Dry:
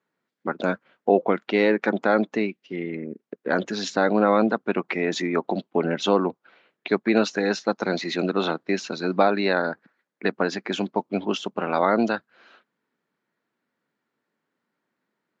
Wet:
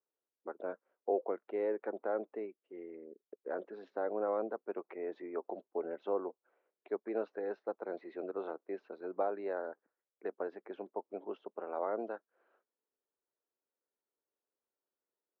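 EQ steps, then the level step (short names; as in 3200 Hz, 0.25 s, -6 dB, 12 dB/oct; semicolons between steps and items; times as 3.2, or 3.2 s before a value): ladder band-pass 520 Hz, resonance 35%; air absorption 120 m; low shelf 350 Hz -9 dB; -1.0 dB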